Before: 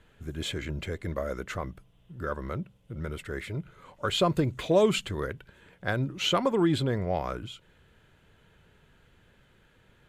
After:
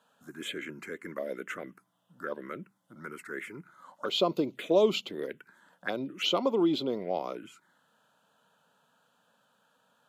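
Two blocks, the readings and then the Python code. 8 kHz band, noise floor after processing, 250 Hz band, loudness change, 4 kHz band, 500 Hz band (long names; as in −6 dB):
−7.0 dB, −72 dBFS, −2.5 dB, −2.0 dB, −1.5 dB, −1.0 dB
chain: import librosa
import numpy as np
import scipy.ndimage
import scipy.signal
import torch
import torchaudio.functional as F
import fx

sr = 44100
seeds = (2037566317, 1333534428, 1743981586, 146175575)

y = scipy.signal.sosfilt(scipy.signal.butter(4, 230.0, 'highpass', fs=sr, output='sos'), x)
y = fx.peak_eq(y, sr, hz=1400.0, db=2.5, octaves=0.67)
y = fx.env_phaser(y, sr, low_hz=350.0, high_hz=1700.0, full_db=-26.5)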